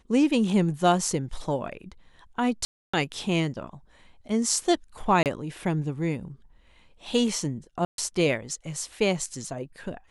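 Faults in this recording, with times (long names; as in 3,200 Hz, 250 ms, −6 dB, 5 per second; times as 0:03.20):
0:02.65–0:02.94: drop-out 285 ms
0:05.23–0:05.26: drop-out 28 ms
0:07.85–0:07.98: drop-out 132 ms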